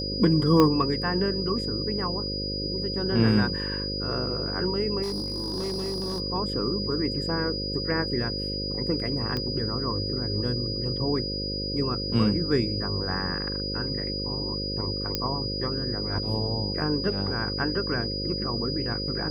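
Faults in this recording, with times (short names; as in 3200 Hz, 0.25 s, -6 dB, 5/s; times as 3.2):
buzz 50 Hz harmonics 11 -33 dBFS
tone 4900 Hz -31 dBFS
0.6 pop -8 dBFS
5.02–6.2 clipped -26.5 dBFS
9.37 pop -17 dBFS
15.15 pop -10 dBFS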